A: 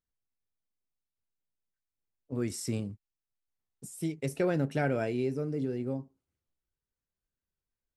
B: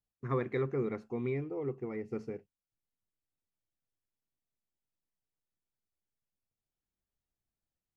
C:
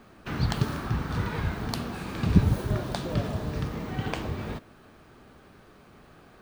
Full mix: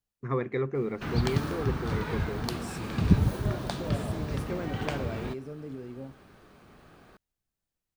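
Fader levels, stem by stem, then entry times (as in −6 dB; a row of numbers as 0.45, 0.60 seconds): −7.5, +3.0, −1.5 decibels; 0.10, 0.00, 0.75 seconds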